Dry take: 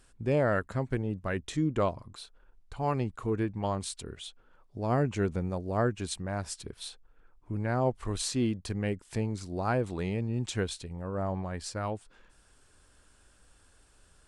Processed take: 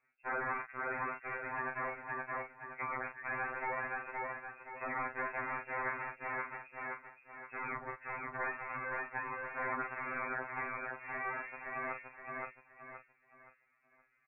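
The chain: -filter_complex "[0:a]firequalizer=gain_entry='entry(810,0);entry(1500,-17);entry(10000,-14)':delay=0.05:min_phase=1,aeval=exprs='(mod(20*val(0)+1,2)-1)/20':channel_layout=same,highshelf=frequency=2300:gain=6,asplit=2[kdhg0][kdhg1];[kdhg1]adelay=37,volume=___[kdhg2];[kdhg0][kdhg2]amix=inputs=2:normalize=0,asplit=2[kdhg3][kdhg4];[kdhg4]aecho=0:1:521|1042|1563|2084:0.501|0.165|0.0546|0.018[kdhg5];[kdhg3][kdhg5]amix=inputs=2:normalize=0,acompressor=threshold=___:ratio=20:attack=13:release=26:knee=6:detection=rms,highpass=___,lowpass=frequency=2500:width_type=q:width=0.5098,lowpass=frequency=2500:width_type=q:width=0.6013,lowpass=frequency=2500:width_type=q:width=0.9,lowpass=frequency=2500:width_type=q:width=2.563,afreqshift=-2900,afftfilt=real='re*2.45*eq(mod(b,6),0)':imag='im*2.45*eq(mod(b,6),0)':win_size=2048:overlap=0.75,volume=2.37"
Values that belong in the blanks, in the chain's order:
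0.316, 0.02, 1200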